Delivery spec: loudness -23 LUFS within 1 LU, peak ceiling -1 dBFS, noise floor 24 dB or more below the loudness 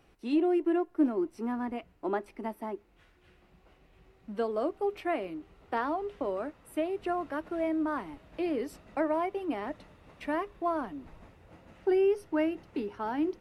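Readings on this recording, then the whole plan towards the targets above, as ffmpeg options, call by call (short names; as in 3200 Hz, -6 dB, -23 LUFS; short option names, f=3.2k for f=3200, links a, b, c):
loudness -32.5 LUFS; peak -16.5 dBFS; loudness target -23.0 LUFS
-> -af "volume=9.5dB"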